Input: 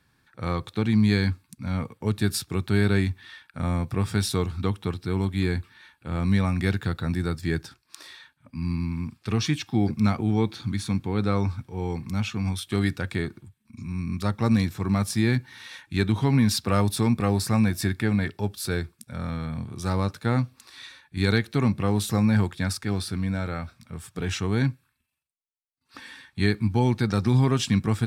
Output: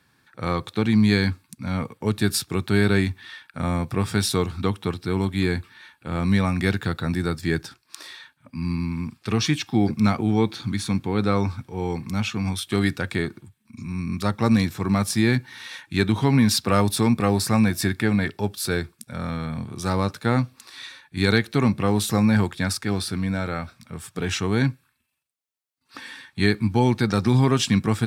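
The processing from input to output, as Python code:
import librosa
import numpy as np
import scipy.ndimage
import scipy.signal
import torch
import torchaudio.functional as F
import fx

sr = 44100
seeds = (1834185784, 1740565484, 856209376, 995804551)

y = fx.highpass(x, sr, hz=140.0, slope=6)
y = y * librosa.db_to_amplitude(4.5)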